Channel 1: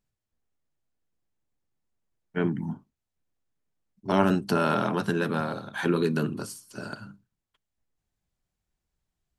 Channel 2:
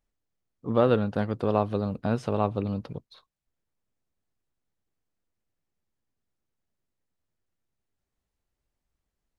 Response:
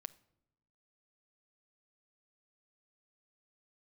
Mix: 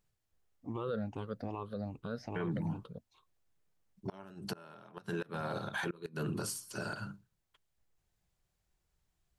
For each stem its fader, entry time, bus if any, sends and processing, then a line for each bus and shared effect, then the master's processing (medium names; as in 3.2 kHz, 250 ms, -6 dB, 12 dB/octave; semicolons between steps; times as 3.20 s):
+2.5 dB, 0.00 s, no send, peaking EQ 250 Hz -9.5 dB 0.39 oct; inverted gate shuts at -15 dBFS, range -31 dB
-13.5 dB, 0.00 s, no send, drifting ripple filter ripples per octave 0.67, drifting +2.5 Hz, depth 18 dB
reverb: none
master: peak limiter -28 dBFS, peak gain reduction 15.5 dB